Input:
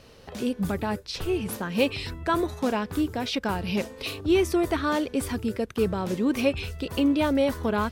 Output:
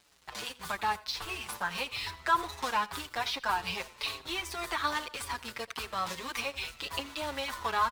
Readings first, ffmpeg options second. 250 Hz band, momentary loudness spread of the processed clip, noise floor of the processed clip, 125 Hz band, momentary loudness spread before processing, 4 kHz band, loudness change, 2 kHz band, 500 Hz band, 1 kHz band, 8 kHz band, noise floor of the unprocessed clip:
-21.5 dB, 8 LU, -57 dBFS, -16.0 dB, 8 LU, -0.5 dB, -7.0 dB, -0.5 dB, -15.0 dB, +0.5 dB, -2.0 dB, -49 dBFS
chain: -filter_complex "[0:a]highshelf=f=4.1k:g=3.5,asplit=2[a][b];[b]acrusher=bits=2:mode=log:mix=0:aa=0.000001,volume=-10.5dB[c];[a][c]amix=inputs=2:normalize=0,alimiter=limit=-12.5dB:level=0:latency=1:release=232,acrossover=split=97|1300[d][e][f];[d]acompressor=threshold=-41dB:ratio=4[g];[e]acompressor=threshold=-24dB:ratio=4[h];[f]acompressor=threshold=-35dB:ratio=4[i];[g][h][i]amix=inputs=3:normalize=0,equalizer=f=125:t=o:w=1:g=-8,equalizer=f=250:t=o:w=1:g=-11,equalizer=f=500:t=o:w=1:g=-5,equalizer=f=1k:t=o:w=1:g=12,equalizer=f=2k:t=o:w=1:g=6,equalizer=f=4k:t=o:w=1:g=8,equalizer=f=8k:t=o:w=1:g=4,aeval=exprs='val(0)+0.00282*(sin(2*PI*60*n/s)+sin(2*PI*2*60*n/s)/2+sin(2*PI*3*60*n/s)/3+sin(2*PI*4*60*n/s)/4+sin(2*PI*5*60*n/s)/5)':c=same,aeval=exprs='sgn(val(0))*max(abs(val(0))-0.0112,0)':c=same,aecho=1:1:86|172|258:0.1|0.039|0.0152,asplit=2[j][k];[k]adelay=6.4,afreqshift=-2.5[l];[j][l]amix=inputs=2:normalize=1,volume=-3.5dB"

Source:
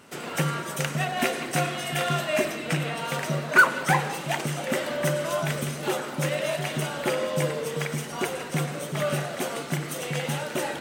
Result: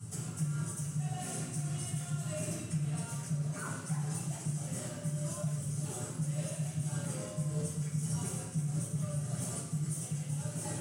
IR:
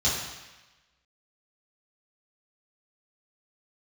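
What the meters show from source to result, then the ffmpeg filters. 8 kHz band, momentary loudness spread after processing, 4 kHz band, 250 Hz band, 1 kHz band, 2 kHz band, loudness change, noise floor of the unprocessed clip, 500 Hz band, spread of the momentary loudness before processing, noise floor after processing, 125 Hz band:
-4.0 dB, 2 LU, -17.5 dB, -6.0 dB, -20.0 dB, -25.5 dB, -9.5 dB, -36 dBFS, -18.5 dB, 6 LU, -43 dBFS, -2.5 dB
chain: -filter_complex "[0:a]equalizer=f=125:t=o:w=1:g=12,equalizer=f=250:t=o:w=1:g=-9,equalizer=f=500:t=o:w=1:g=-8,equalizer=f=1k:t=o:w=1:g=-9,equalizer=f=2k:t=o:w=1:g=-12,equalizer=f=4k:t=o:w=1:g=-9,equalizer=f=8k:t=o:w=1:g=6,areverse,acompressor=threshold=-34dB:ratio=10,areverse,alimiter=level_in=10.5dB:limit=-24dB:level=0:latency=1:release=104,volume=-10.5dB[a];[1:a]atrim=start_sample=2205,asetrate=66150,aresample=44100[b];[a][b]afir=irnorm=-1:irlink=0,volume=-5dB"

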